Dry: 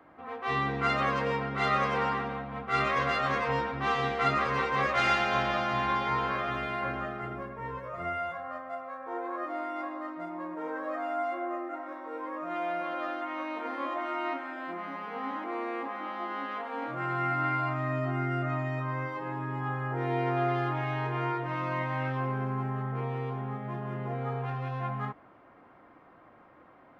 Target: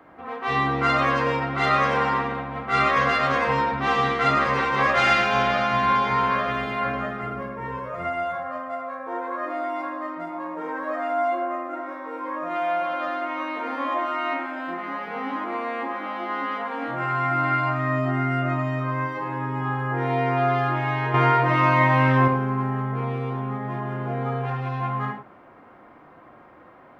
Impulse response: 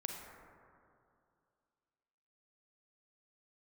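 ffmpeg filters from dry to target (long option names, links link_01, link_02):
-filter_complex "[0:a]asettb=1/sr,asplit=3[link_01][link_02][link_03];[link_01]atrim=end=21.144[link_04];[link_02]atrim=start=21.14:end=22.28,asetpts=PTS-STARTPTS,afade=type=in:duration=0.004:curve=qsin,afade=type=out:start_time=1.136:duration=0.004:curve=qsin,acontrast=84[link_05];[link_03]atrim=start=22.276[link_06];[link_04][link_05]acrossfade=duration=0.004:curve1=hsin:curve2=qsin[link_07];[link_07][link_06]acrossfade=duration=0.004:curve1=qsin:curve2=hsin[link_08];[1:a]atrim=start_sample=2205,afade=type=out:start_time=0.16:duration=0.01,atrim=end_sample=7497[link_09];[link_08][link_09]afir=irnorm=-1:irlink=0,volume=8.5dB"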